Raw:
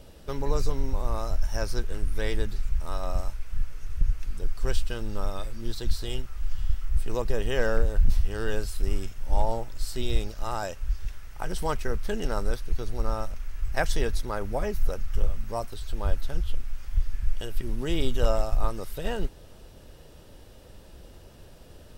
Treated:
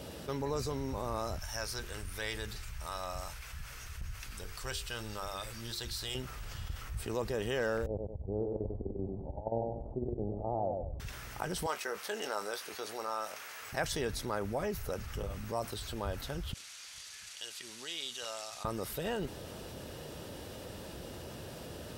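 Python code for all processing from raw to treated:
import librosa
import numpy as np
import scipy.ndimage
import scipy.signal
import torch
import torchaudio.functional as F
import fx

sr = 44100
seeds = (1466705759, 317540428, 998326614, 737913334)

y = fx.chain(x, sr, fx.peak_eq(hz=270.0, db=-12.5, octaves=2.8),
    fx.hum_notches(base_hz=50, count=10), at=(1.38, 6.15))
y = fx.chain(y, sr, fx.steep_lowpass(hz=800.0, slope=48),
    fx.over_compress(threshold_db=-25.0, ratio=-0.5),
    fx.echo_feedback(ms=97, feedback_pct=24, wet_db=-6.5), at=(7.86, 11.0))
y = fx.chain(y, sr, fx.highpass(hz=570.0, slope=12),
    fx.doubler(ms=19.0, db=-11), at=(11.66, 13.73))
y = fx.chain(y, sr, fx.cvsd(bps=64000),
    fx.bandpass_q(hz=5100.0, q=1.2),
    fx.notch(hz=5200.0, q=14.0), at=(16.53, 18.65))
y = scipy.signal.sosfilt(scipy.signal.butter(2, 100.0, 'highpass', fs=sr, output='sos'), y)
y = fx.env_flatten(y, sr, amount_pct=50)
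y = y * librosa.db_to_amplitude(-7.5)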